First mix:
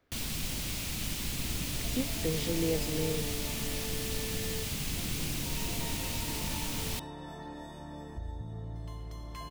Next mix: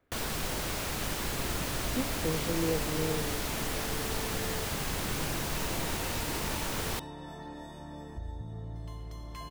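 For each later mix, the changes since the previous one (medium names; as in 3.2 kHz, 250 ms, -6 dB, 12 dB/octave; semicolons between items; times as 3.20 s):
speech: add Gaussian low-pass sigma 2.2 samples; first sound: add high-order bell 800 Hz +11 dB 2.6 oct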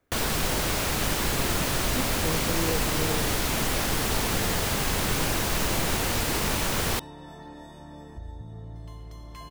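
first sound +7.5 dB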